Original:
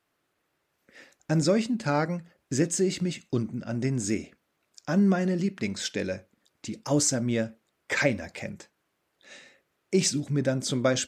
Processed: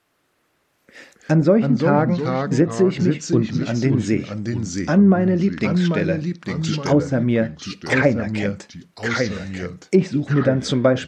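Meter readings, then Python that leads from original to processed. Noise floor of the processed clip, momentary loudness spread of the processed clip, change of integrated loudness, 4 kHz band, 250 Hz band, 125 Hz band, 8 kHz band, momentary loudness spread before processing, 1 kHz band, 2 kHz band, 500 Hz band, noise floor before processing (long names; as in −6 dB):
−67 dBFS, 10 LU, +8.0 dB, +2.5 dB, +9.5 dB, +10.0 dB, −5.0 dB, 14 LU, +9.0 dB, +7.5 dB, +9.0 dB, −77 dBFS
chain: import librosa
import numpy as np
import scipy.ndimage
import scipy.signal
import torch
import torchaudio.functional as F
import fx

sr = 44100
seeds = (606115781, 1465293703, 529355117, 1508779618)

y = fx.echo_pitch(x, sr, ms=164, semitones=-2, count=2, db_per_echo=-6.0)
y = fx.env_lowpass_down(y, sr, base_hz=1300.0, full_db=-19.5)
y = y * librosa.db_to_amplitude(8.5)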